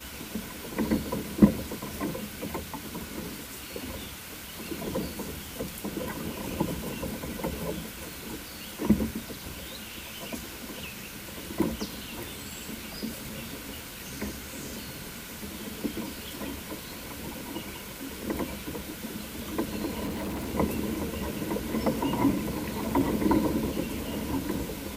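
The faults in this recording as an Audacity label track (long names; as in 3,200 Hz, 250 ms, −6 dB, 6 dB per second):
20.050000	20.480000	clipping −30 dBFS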